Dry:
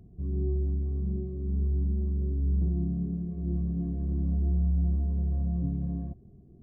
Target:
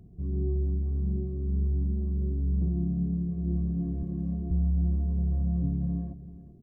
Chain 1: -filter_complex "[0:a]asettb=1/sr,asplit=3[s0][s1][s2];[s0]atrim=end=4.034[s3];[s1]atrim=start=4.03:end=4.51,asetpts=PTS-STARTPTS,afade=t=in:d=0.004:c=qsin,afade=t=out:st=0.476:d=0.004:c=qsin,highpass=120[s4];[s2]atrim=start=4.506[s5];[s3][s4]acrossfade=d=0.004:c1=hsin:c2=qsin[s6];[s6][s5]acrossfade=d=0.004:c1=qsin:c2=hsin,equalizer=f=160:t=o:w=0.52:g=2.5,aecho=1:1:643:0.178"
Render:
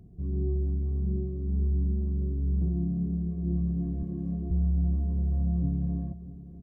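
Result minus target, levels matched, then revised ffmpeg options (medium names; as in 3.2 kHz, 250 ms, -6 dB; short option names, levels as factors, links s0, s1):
echo 259 ms late
-filter_complex "[0:a]asettb=1/sr,asplit=3[s0][s1][s2];[s0]atrim=end=4.034[s3];[s1]atrim=start=4.03:end=4.51,asetpts=PTS-STARTPTS,afade=t=in:d=0.004:c=qsin,afade=t=out:st=0.476:d=0.004:c=qsin,highpass=120[s4];[s2]atrim=start=4.506[s5];[s3][s4]acrossfade=d=0.004:c1=hsin:c2=qsin[s6];[s6][s5]acrossfade=d=0.004:c1=qsin:c2=hsin,equalizer=f=160:t=o:w=0.52:g=2.5,aecho=1:1:384:0.178"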